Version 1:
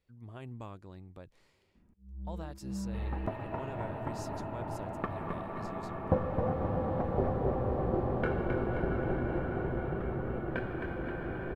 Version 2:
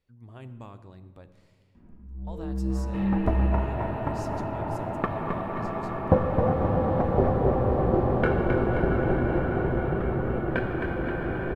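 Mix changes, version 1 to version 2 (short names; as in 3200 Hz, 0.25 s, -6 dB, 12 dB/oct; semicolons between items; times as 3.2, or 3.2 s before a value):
first sound +6.0 dB; second sound +8.0 dB; reverb: on, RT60 1.4 s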